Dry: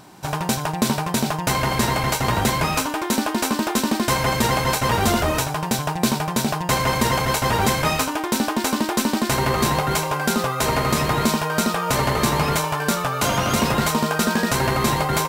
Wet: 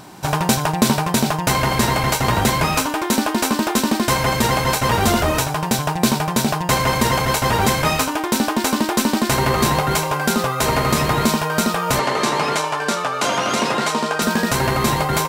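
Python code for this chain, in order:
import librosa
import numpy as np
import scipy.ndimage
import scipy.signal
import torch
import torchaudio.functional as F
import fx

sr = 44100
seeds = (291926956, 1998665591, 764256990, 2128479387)

y = fx.rider(x, sr, range_db=4, speed_s=2.0)
y = fx.bandpass_edges(y, sr, low_hz=260.0, high_hz=7900.0, at=(11.99, 14.22))
y = F.gain(torch.from_numpy(y), 2.5).numpy()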